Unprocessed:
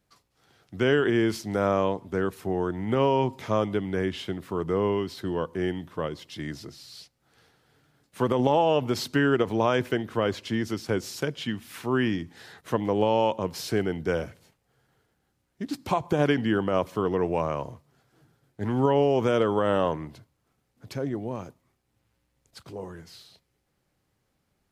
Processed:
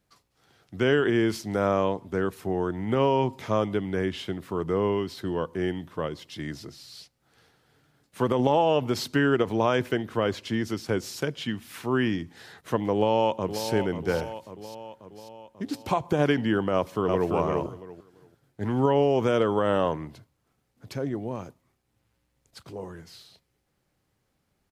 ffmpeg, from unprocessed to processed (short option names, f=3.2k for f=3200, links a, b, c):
-filter_complex "[0:a]asplit=2[a][b];[b]afade=t=in:st=12.94:d=0.01,afade=t=out:st=13.66:d=0.01,aecho=0:1:540|1080|1620|2160|2700|3240|3780:0.334965|0.200979|0.120588|0.0723525|0.0434115|0.0260469|0.0156281[c];[a][c]amix=inputs=2:normalize=0,asplit=2[d][e];[e]afade=t=in:st=16.74:d=0.01,afade=t=out:st=17.32:d=0.01,aecho=0:1:340|680|1020:0.668344|0.133669|0.0267338[f];[d][f]amix=inputs=2:normalize=0"